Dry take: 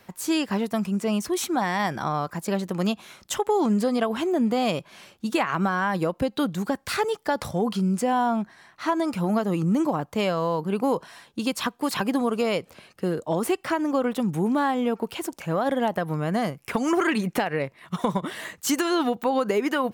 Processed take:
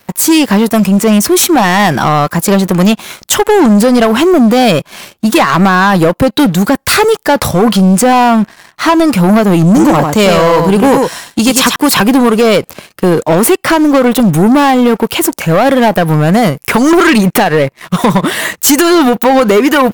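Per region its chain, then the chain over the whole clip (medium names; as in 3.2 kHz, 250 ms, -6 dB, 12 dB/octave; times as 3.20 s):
9.66–11.76 s: peaking EQ 6.9 kHz +6.5 dB 0.79 oct + delay 99 ms -6.5 dB
whole clip: treble shelf 12 kHz +10 dB; waveshaping leveller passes 3; trim +9 dB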